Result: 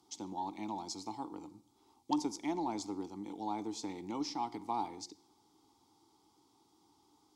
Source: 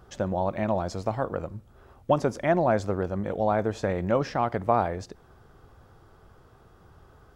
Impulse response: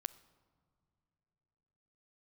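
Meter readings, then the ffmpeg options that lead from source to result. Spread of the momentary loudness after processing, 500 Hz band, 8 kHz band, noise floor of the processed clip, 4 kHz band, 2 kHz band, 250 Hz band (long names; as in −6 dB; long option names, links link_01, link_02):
9 LU, −20.5 dB, can't be measured, −71 dBFS, −1.0 dB, −19.0 dB, −8.0 dB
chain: -filter_complex "[0:a]asplit=3[link_01][link_02][link_03];[link_01]bandpass=frequency=300:width_type=q:width=8,volume=0dB[link_04];[link_02]bandpass=frequency=870:width_type=q:width=8,volume=-6dB[link_05];[link_03]bandpass=frequency=2240:width_type=q:width=8,volume=-9dB[link_06];[link_04][link_05][link_06]amix=inputs=3:normalize=0,aeval=exprs='0.1*(cos(1*acos(clip(val(0)/0.1,-1,1)))-cos(1*PI/2))+0.00251*(cos(4*acos(clip(val(0)/0.1,-1,1)))-cos(4*PI/2))+0.00178*(cos(6*acos(clip(val(0)/0.1,-1,1)))-cos(6*PI/2))':channel_layout=same,lowshelf=frequency=370:gain=-6,acrossover=split=160|1200[link_07][link_08][link_09];[link_09]aexciter=amount=15.3:drive=8.5:freq=3900[link_10];[link_07][link_08][link_10]amix=inputs=3:normalize=0[link_11];[1:a]atrim=start_sample=2205,afade=type=out:start_time=0.27:duration=0.01,atrim=end_sample=12348[link_12];[link_11][link_12]afir=irnorm=-1:irlink=0,volume=5dB"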